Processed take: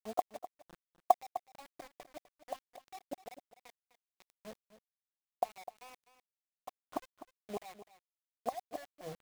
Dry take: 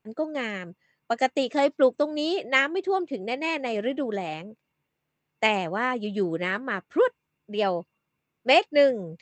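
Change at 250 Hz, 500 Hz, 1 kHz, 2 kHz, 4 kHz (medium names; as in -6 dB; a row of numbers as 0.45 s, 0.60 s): -24.0 dB, -19.5 dB, -9.5 dB, -31.5 dB, -26.5 dB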